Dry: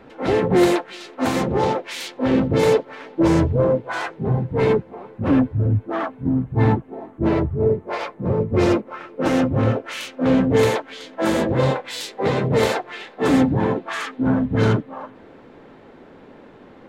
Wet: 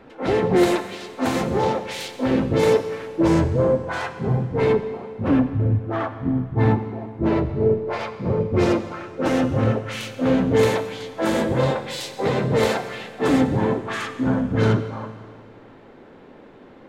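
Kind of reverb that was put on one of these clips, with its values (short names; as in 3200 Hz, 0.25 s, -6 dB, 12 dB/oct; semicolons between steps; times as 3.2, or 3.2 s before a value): Schroeder reverb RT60 1.9 s, combs from 32 ms, DRR 10 dB; gain -1.5 dB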